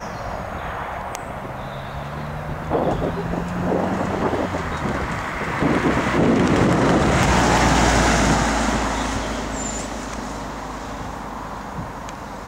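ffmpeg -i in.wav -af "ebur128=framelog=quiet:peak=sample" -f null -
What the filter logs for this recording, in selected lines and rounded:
Integrated loudness:
  I:         -21.6 LUFS
  Threshold: -31.7 LUFS
Loudness range:
  LRA:         9.6 LU
  Threshold: -40.8 LUFS
  LRA low:   -26.9 LUFS
  LRA high:  -17.3 LUFS
Sample peak:
  Peak:       -3.6 dBFS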